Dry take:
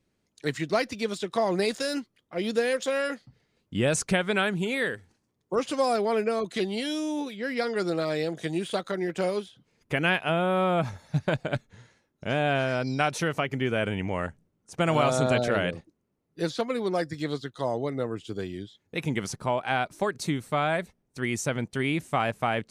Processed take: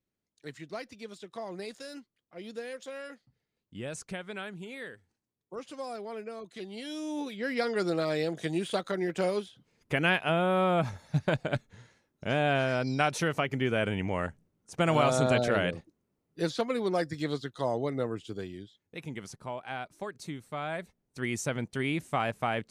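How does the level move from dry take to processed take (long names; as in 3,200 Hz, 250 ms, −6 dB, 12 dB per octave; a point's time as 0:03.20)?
0:06.57 −14 dB
0:07.33 −1.5 dB
0:18.07 −1.5 dB
0:19.03 −11 dB
0:20.50 −11 dB
0:21.20 −3.5 dB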